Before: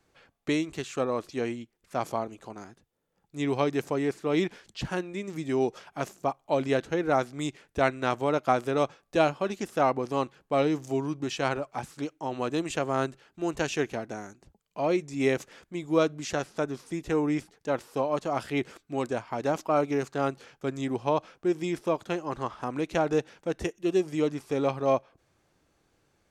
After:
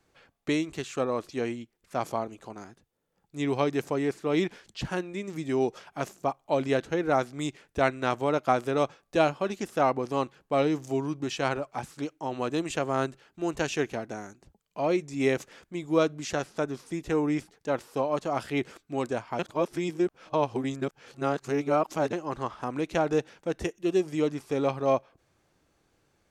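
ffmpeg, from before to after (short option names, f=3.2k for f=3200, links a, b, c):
-filter_complex "[0:a]asplit=3[a][b][c];[a]atrim=end=19.392[d];[b]atrim=start=19.388:end=22.132,asetpts=PTS-STARTPTS,areverse[e];[c]atrim=start=22.128[f];[d][e]acrossfade=d=0.004:c1=hsin:c2=hsin[g];[g][f]acrossfade=d=0.004:c1=hsin:c2=hsin"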